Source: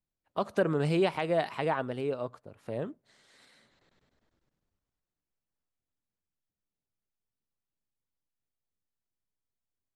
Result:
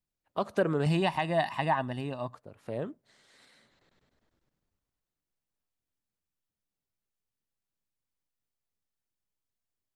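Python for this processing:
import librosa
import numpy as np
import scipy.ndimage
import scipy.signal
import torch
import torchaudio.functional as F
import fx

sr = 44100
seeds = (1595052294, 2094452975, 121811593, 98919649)

y = fx.comb(x, sr, ms=1.1, depth=0.78, at=(0.86, 2.35))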